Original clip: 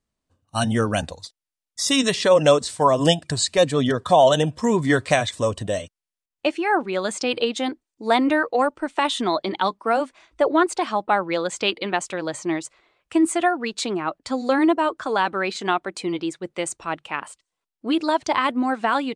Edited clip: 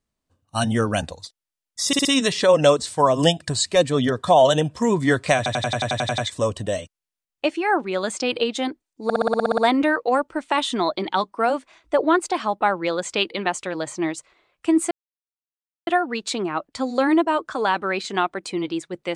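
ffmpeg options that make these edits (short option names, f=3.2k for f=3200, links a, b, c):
-filter_complex "[0:a]asplit=23[a][b][c][d][e][f][g][h][i][j][k][l][m][n][o][p][q][r][s][t][u][v][w];[a]atrim=end=1.932[x];[b]atrim=start=1.868:end=1.932[y];[c]atrim=start=1.868:end=1.932[z];[d]atrim=start=1.868:end=5.282[aa];[e]atrim=start=5.188:end=5.282[ab];[f]atrim=start=5.188:end=5.282[ac];[g]atrim=start=5.188:end=5.282[ad];[h]atrim=start=5.188:end=5.282[ae];[i]atrim=start=5.188:end=5.282[af];[j]atrim=start=5.188:end=5.282[ag];[k]atrim=start=5.188:end=5.282[ah];[l]atrim=start=5.188:end=5.282[ai];[m]atrim=start=5.188:end=8.112[aj];[n]atrim=start=8.048:end=8.112[ak];[o]atrim=start=8.048:end=8.112[al];[p]atrim=start=8.048:end=8.112[am];[q]atrim=start=8.048:end=8.112[an];[r]atrim=start=8.048:end=8.112[ao];[s]atrim=start=8.048:end=8.112[ap];[t]atrim=start=8.048:end=8.112[aq];[u]atrim=start=8.048:end=8.112[ar];[v]atrim=start=8.048:end=13.38,asetpts=PTS-STARTPTS,afade=t=out:st=5.328:d=0.004:c=hsin,apad=pad_dur=0.96[as];[w]atrim=start=13.38,asetpts=PTS-STARTPTS,afade=t=in:d=0.004:c=hsin[at];[x][y]acrossfade=d=0.004:c1=hsin:c2=hsin[au];[au][z]acrossfade=d=0.004:c1=hsin:c2=hsin[av];[av][aa]acrossfade=d=0.004:c1=hsin:c2=hsin[aw];[aw][ab]acrossfade=d=0.004:c1=hsin:c2=hsin[ax];[ax][ac]acrossfade=d=0.004:c1=hsin:c2=hsin[ay];[ay][ad]acrossfade=d=0.004:c1=hsin:c2=hsin[az];[az][ae]acrossfade=d=0.004:c1=hsin:c2=hsin[ba];[ba][af]acrossfade=d=0.004:c1=hsin:c2=hsin[bb];[bb][ag]acrossfade=d=0.004:c1=hsin:c2=hsin[bc];[bc][ah]acrossfade=d=0.004:c1=hsin:c2=hsin[bd];[bd][ai]acrossfade=d=0.004:c1=hsin:c2=hsin[be];[be][aj]acrossfade=d=0.004:c1=hsin:c2=hsin[bf];[bf][ak]acrossfade=d=0.004:c1=hsin:c2=hsin[bg];[bg][al]acrossfade=d=0.004:c1=hsin:c2=hsin[bh];[bh][am]acrossfade=d=0.004:c1=hsin:c2=hsin[bi];[bi][an]acrossfade=d=0.004:c1=hsin:c2=hsin[bj];[bj][ao]acrossfade=d=0.004:c1=hsin:c2=hsin[bk];[bk][ap]acrossfade=d=0.004:c1=hsin:c2=hsin[bl];[bl][aq]acrossfade=d=0.004:c1=hsin:c2=hsin[bm];[bm][ar]acrossfade=d=0.004:c1=hsin:c2=hsin[bn];[as][at]concat=n=2:v=0:a=1[bo];[bn][bo]acrossfade=d=0.004:c1=hsin:c2=hsin"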